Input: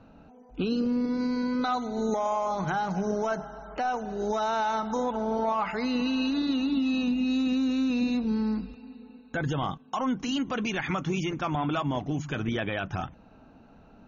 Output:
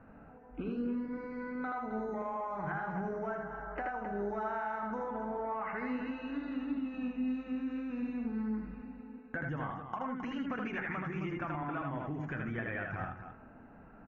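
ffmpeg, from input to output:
-af "lowpass=f=5.7k:w=0.5412,lowpass=f=5.7k:w=1.3066,highshelf=f=2.7k:t=q:w=3:g=-13,bandreject=f=91.93:t=h:w=4,bandreject=f=183.86:t=h:w=4,bandreject=f=275.79:t=h:w=4,bandreject=f=367.72:t=h:w=4,bandreject=f=459.65:t=h:w=4,bandreject=f=551.58:t=h:w=4,bandreject=f=643.51:t=h:w=4,bandreject=f=735.44:t=h:w=4,bandreject=f=827.37:t=h:w=4,bandreject=f=919.3:t=h:w=4,bandreject=f=1.01123k:t=h:w=4,bandreject=f=1.10316k:t=h:w=4,bandreject=f=1.19509k:t=h:w=4,bandreject=f=1.28702k:t=h:w=4,bandreject=f=1.37895k:t=h:w=4,bandreject=f=1.47088k:t=h:w=4,bandreject=f=1.56281k:t=h:w=4,bandreject=f=1.65474k:t=h:w=4,bandreject=f=1.74667k:t=h:w=4,bandreject=f=1.8386k:t=h:w=4,bandreject=f=1.93053k:t=h:w=4,bandreject=f=2.02246k:t=h:w=4,bandreject=f=2.11439k:t=h:w=4,bandreject=f=2.20632k:t=h:w=4,bandreject=f=2.29825k:t=h:w=4,bandreject=f=2.39018k:t=h:w=4,bandreject=f=2.48211k:t=h:w=4,bandreject=f=2.57404k:t=h:w=4,bandreject=f=2.66597k:t=h:w=4,bandreject=f=2.7579k:t=h:w=4,acompressor=threshold=-33dB:ratio=6,aecho=1:1:78.72|265.3:0.708|0.355,volume=-3.5dB"

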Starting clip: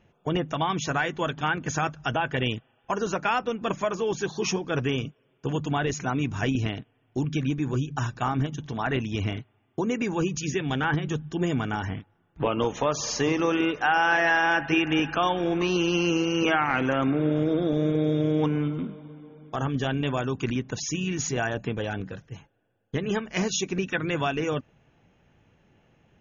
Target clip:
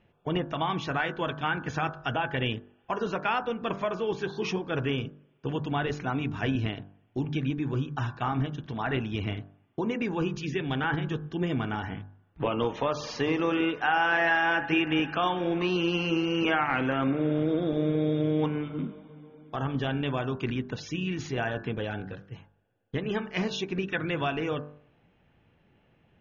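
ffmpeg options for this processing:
-af "lowpass=f=4.4k:w=0.5412,lowpass=f=4.4k:w=1.3066,bandreject=f=49.36:t=h:w=4,bandreject=f=98.72:t=h:w=4,bandreject=f=148.08:t=h:w=4,bandreject=f=197.44:t=h:w=4,bandreject=f=246.8:t=h:w=4,bandreject=f=296.16:t=h:w=4,bandreject=f=345.52:t=h:w=4,bandreject=f=394.88:t=h:w=4,bandreject=f=444.24:t=h:w=4,bandreject=f=493.6:t=h:w=4,bandreject=f=542.96:t=h:w=4,bandreject=f=592.32:t=h:w=4,bandreject=f=641.68:t=h:w=4,bandreject=f=691.04:t=h:w=4,bandreject=f=740.4:t=h:w=4,bandreject=f=789.76:t=h:w=4,bandreject=f=839.12:t=h:w=4,bandreject=f=888.48:t=h:w=4,bandreject=f=937.84:t=h:w=4,bandreject=f=987.2:t=h:w=4,bandreject=f=1.03656k:t=h:w=4,bandreject=f=1.08592k:t=h:w=4,bandreject=f=1.13528k:t=h:w=4,bandreject=f=1.18464k:t=h:w=4,bandreject=f=1.234k:t=h:w=4,bandreject=f=1.28336k:t=h:w=4,bandreject=f=1.33272k:t=h:w=4,bandreject=f=1.38208k:t=h:w=4,bandreject=f=1.43144k:t=h:w=4,bandreject=f=1.4808k:t=h:w=4,bandreject=f=1.53016k:t=h:w=4,bandreject=f=1.57952k:t=h:w=4,bandreject=f=1.62888k:t=h:w=4,bandreject=f=1.67824k:t=h:w=4,bandreject=f=1.7276k:t=h:w=4,volume=-2dB"

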